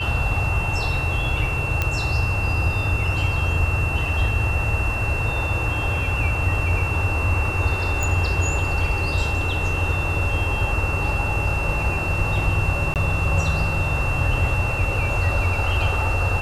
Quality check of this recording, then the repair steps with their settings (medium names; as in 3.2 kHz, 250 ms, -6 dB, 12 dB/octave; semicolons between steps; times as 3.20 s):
whine 2.7 kHz -26 dBFS
1.82 s: pop -7 dBFS
8.03 s: pop
12.94–12.96 s: dropout 18 ms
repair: de-click; band-stop 2.7 kHz, Q 30; interpolate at 12.94 s, 18 ms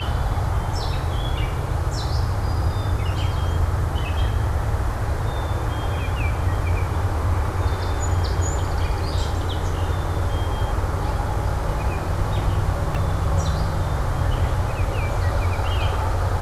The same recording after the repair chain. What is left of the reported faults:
nothing left